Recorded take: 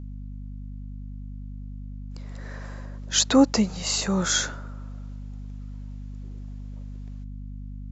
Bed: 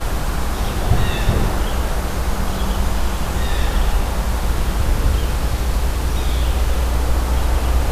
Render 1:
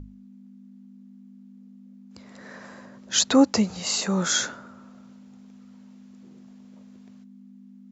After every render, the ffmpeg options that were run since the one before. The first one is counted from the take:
-af "bandreject=f=50:t=h:w=6,bandreject=f=100:t=h:w=6,bandreject=f=150:t=h:w=6"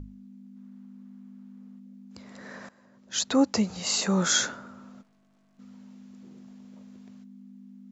-filter_complex "[0:a]asplit=3[s0][s1][s2];[s0]afade=t=out:st=0.55:d=0.02[s3];[s1]equalizer=f=1200:t=o:w=2:g=11.5,afade=t=in:st=0.55:d=0.02,afade=t=out:st=1.78:d=0.02[s4];[s2]afade=t=in:st=1.78:d=0.02[s5];[s3][s4][s5]amix=inputs=3:normalize=0,asplit=3[s6][s7][s8];[s6]afade=t=out:st=5.01:d=0.02[s9];[s7]aeval=exprs='(tanh(1780*val(0)+0.55)-tanh(0.55))/1780':c=same,afade=t=in:st=5.01:d=0.02,afade=t=out:st=5.58:d=0.02[s10];[s8]afade=t=in:st=5.58:d=0.02[s11];[s9][s10][s11]amix=inputs=3:normalize=0,asplit=2[s12][s13];[s12]atrim=end=2.69,asetpts=PTS-STARTPTS,afade=t=out:st=2.686:d=0.004:c=hsin:silence=0.11885[s14];[s13]atrim=start=2.69,asetpts=PTS-STARTPTS,afade=t=in:d=1.4:silence=0.11885[s15];[s14][s15]concat=n=2:v=0:a=1"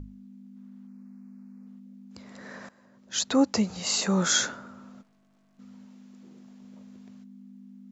-filter_complex "[0:a]asettb=1/sr,asplit=3[s0][s1][s2];[s0]atrim=end=0.874[s3];[s1]atrim=start=0.87:end=1.67,asetpts=PTS-STARTPTS,afade=t=in:d=0.004:c=qsin,afade=t=out:st=0.796:d=0.004:c=qsin,asuperstop=centerf=3300:order=4:qfactor=1.9[s4];[s2]atrim=start=1.666[s5];[s3][s4]acrossfade=d=0.004:c1=hsin:c2=qsin[s6];[s6][s5]acrossfade=d=0.004:c1=qsin:c2=hsin,asettb=1/sr,asplit=3[s7][s8][s9];[s7]atrim=end=5.854[s10];[s8]atrim=start=5.85:end=6.62,asetpts=PTS-STARTPTS,afade=t=in:d=0.004:c=qsin,afade=t=out:st=0.766:d=0.004:c=qsin,equalizer=f=83:t=o:w=1.8:g=-7.5[s11];[s9]atrim=start=6.616[s12];[s10][s11]acrossfade=d=0.004:c1=hsin:c2=qsin[s13];[s13][s12]acrossfade=d=0.004:c1=qsin:c2=hsin"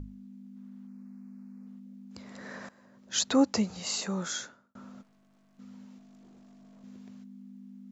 -filter_complex "[0:a]asettb=1/sr,asplit=3[s0][s1][s2];[s0]atrim=end=5.984[s3];[s1]atrim=start=5.98:end=6.84,asetpts=PTS-STARTPTS,afade=t=in:d=0.004:c=qsin,afade=t=out:st=0.856:d=0.004:c=qsin,aeval=exprs='(tanh(398*val(0)+0.15)-tanh(0.15))/398':c=same[s4];[s2]atrim=start=6.836[s5];[s3][s4]acrossfade=d=0.004:c1=hsin:c2=qsin[s6];[s6][s5]acrossfade=d=0.004:c1=qsin:c2=hsin,asplit=2[s7][s8];[s7]atrim=end=4.75,asetpts=PTS-STARTPTS,afade=t=out:st=3.16:d=1.59[s9];[s8]atrim=start=4.75,asetpts=PTS-STARTPTS,afade=t=in:d=0.004:c=hsin[s10];[s9][s10]concat=n=2:v=0:a=1"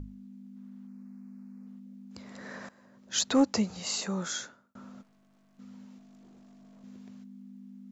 -af "asoftclip=type=hard:threshold=0.158"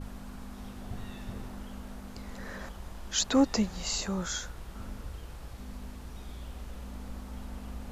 -filter_complex "[1:a]volume=0.0596[s0];[0:a][s0]amix=inputs=2:normalize=0"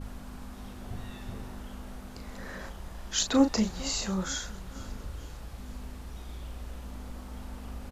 -filter_complex "[0:a]asplit=2[s0][s1];[s1]adelay=37,volume=0.422[s2];[s0][s2]amix=inputs=2:normalize=0,aecho=1:1:454|908|1362|1816:0.1|0.053|0.0281|0.0149"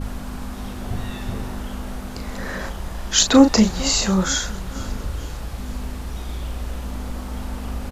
-af "volume=3.98,alimiter=limit=0.708:level=0:latency=1"

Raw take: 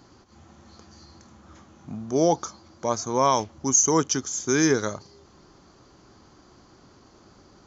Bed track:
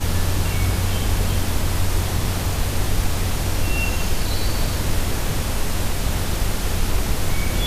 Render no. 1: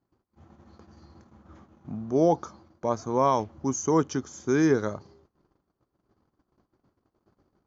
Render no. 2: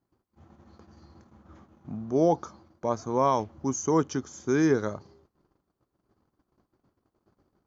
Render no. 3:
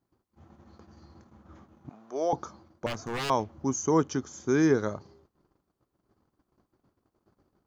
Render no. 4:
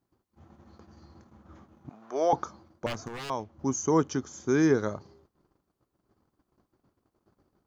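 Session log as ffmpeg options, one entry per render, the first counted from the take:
-af "lowpass=f=1100:p=1,agate=range=0.0501:threshold=0.00282:ratio=16:detection=peak"
-af "volume=0.891"
-filter_complex "[0:a]asettb=1/sr,asplit=3[s0][s1][s2];[s0]atrim=end=1.894[s3];[s1]atrim=start=1.89:end=2.33,asetpts=PTS-STARTPTS,afade=t=in:d=0.004:c=qsin,afade=t=out:st=0.436:d=0.004:c=qsin,highpass=640[s4];[s2]atrim=start=2.326[s5];[s3][s4]acrossfade=d=0.004:c1=hsin:c2=qsin[s6];[s6][s5]acrossfade=d=0.004:c1=qsin:c2=hsin,asettb=1/sr,asplit=3[s7][s8][s9];[s7]atrim=end=2.864[s10];[s8]atrim=start=2.86:end=3.3,asetpts=PTS-STARTPTS,afade=t=in:d=0.004:c=qsin,afade=t=out:st=0.436:d=0.004:c=qsin,aeval=exprs='0.0447*(abs(mod(val(0)/0.0447+3,4)-2)-1)':c=same[s11];[s9]atrim=start=3.296[s12];[s10][s11]acrossfade=d=0.004:c1=hsin:c2=qsin[s13];[s13][s12]acrossfade=d=0.004:c1=qsin:c2=hsin"
-filter_complex "[0:a]asettb=1/sr,asplit=3[s0][s1][s2];[s0]atrim=end=2.024[s3];[s1]atrim=start=2.02:end=2.44,asetpts=PTS-STARTPTS,afade=t=in:d=0.004:c=qsin,afade=t=out:st=0.416:d=0.004:c=qsin,equalizer=f=1600:t=o:w=2.4:g=7.5[s4];[s2]atrim=start=2.436[s5];[s3][s4]acrossfade=d=0.004:c1=hsin:c2=qsin[s6];[s6][s5]acrossfade=d=0.004:c1=qsin:c2=hsin,asplit=3[s7][s8][s9];[s7]atrim=end=3.082[s10];[s8]atrim=start=3.078:end=3.592,asetpts=PTS-STARTPTS,volume=0.473[s11];[s9]atrim=start=3.588[s12];[s10][s11]acrossfade=d=0.004:c1=hsin:c2=hsin[s13];[s13][s12]acrossfade=d=0.004:c1=hsin:c2=hsin"

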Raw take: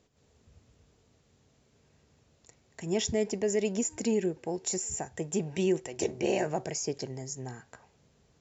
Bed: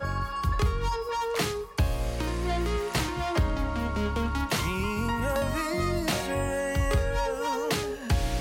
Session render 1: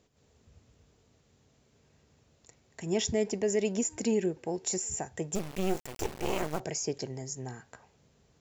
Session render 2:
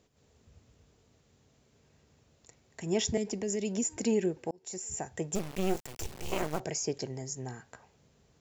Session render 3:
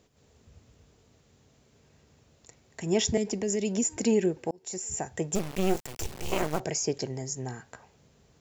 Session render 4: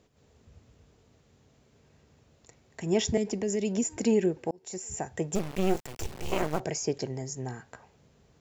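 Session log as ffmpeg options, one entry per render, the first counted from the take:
-filter_complex "[0:a]asettb=1/sr,asplit=3[s0][s1][s2];[s0]atrim=end=5.354[s3];[s1]atrim=start=5.35:end=6.6,asetpts=PTS-STARTPTS,afade=t=in:d=0.004:c=qsin,afade=t=out:st=1.246:d=0.004:c=qsin,acrusher=bits=4:dc=4:mix=0:aa=0.000001[s4];[s2]atrim=start=6.596[s5];[s3][s4]acrossfade=d=0.004:c1=hsin:c2=qsin[s6];[s6][s5]acrossfade=d=0.004:c1=qsin:c2=hsin"
-filter_complex "[0:a]asettb=1/sr,asplit=3[s0][s1][s2];[s0]atrim=end=3.174[s3];[s1]atrim=start=3.17:end=3.97,asetpts=PTS-STARTPTS,afade=t=in:d=0.004:c=qsin,afade=t=out:st=0.796:d=0.004:c=qsin,acrossover=split=320|3000[s4][s5][s6];[s5]acompressor=threshold=0.0126:ratio=6:attack=3.2:release=140:knee=2.83:detection=peak[s7];[s4][s7][s6]amix=inputs=3:normalize=0[s8];[s2]atrim=start=3.966[s9];[s3][s8]acrossfade=d=0.004:c1=hsin:c2=qsin[s10];[s10][s9]acrossfade=d=0.004:c1=qsin:c2=hsin,asettb=1/sr,asplit=3[s11][s12][s13];[s11]atrim=end=5.764[s14];[s12]atrim=start=5.76:end=6.32,asetpts=PTS-STARTPTS,afade=t=in:d=0.004:c=qsin,afade=t=out:st=0.556:d=0.004:c=qsin,acrossover=split=150|3000[s15][s16][s17];[s16]acompressor=threshold=0.00708:ratio=6:attack=3.2:release=140:knee=2.83:detection=peak[s18];[s15][s18][s17]amix=inputs=3:normalize=0[s19];[s13]atrim=start=6.316[s20];[s14][s19]acrossfade=d=0.004:c1=hsin:c2=qsin[s21];[s21][s20]acrossfade=d=0.004:c1=qsin:c2=hsin,asplit=2[s22][s23];[s22]atrim=end=4.51,asetpts=PTS-STARTPTS,afade=t=out:st=4.506:d=0.004:c=hsin[s24];[s23]atrim=start=4.51,asetpts=PTS-STARTPTS,afade=t=in:d=0.58[s25];[s24][s25]concat=n=2:v=0:a=1"
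-af "volume=1.58"
-af "highshelf=f=4100:g=-5.5"

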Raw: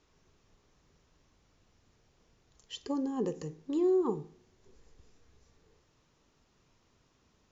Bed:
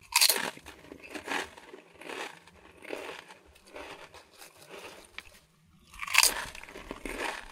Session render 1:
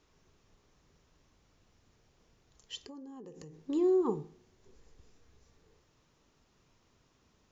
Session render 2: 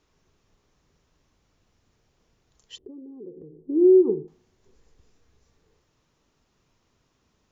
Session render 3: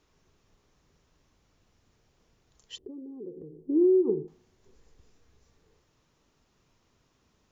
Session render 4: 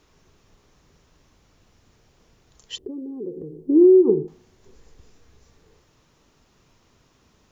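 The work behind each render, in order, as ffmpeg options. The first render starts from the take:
-filter_complex "[0:a]asettb=1/sr,asplit=3[s0][s1][s2];[s0]atrim=end=2.764[s3];[s1]atrim=start=2.76:end=3.54,asetpts=PTS-STARTPTS,afade=t=in:d=0.004:c=qsin,afade=t=out:st=0.776:d=0.004:c=qsin,acompressor=threshold=0.00562:ratio=10:attack=3.2:release=140:knee=1:detection=peak[s4];[s2]atrim=start=3.536[s5];[s3][s4]acrossfade=d=0.004:c1=hsin:c2=qsin[s6];[s6][s5]acrossfade=d=0.004:c1=qsin:c2=hsin"
-filter_complex "[0:a]asettb=1/sr,asplit=3[s0][s1][s2];[s0]atrim=end=2.784[s3];[s1]atrim=start=2.78:end=4.28,asetpts=PTS-STARTPTS,afade=t=in:d=0.004:c=qsin,afade=t=out:st=1.496:d=0.004:c=qsin,lowpass=f=390:t=q:w=4.2[s4];[s2]atrim=start=4.276[s5];[s3][s4]acrossfade=d=0.004:c1=hsin:c2=qsin[s6];[s6][s5]acrossfade=d=0.004:c1=qsin:c2=hsin"
-af "acompressor=threshold=0.112:ratio=6"
-af "volume=2.82"

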